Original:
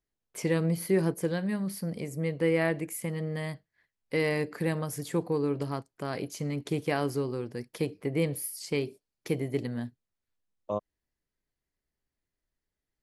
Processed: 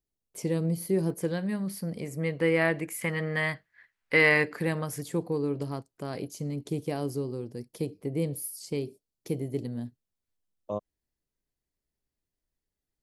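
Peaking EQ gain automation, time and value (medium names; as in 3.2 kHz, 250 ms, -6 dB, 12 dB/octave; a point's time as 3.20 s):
peaking EQ 1.7 kHz 2 oct
-10.5 dB
from 1.10 s -1.5 dB
from 2.06 s +5 dB
from 3.01 s +14 dB
from 4.52 s +2.5 dB
from 5.02 s -6 dB
from 6.27 s -12.5 dB
from 9.86 s -5.5 dB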